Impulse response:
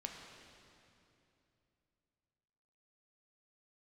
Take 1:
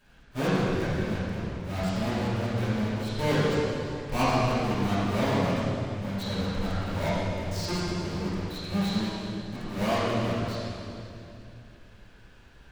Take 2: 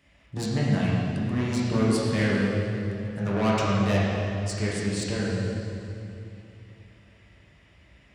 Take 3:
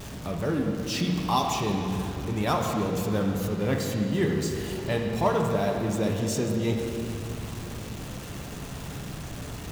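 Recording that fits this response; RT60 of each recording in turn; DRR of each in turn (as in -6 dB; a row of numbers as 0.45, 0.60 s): 3; 2.8, 2.8, 2.8 s; -14.5, -7.0, 1.0 dB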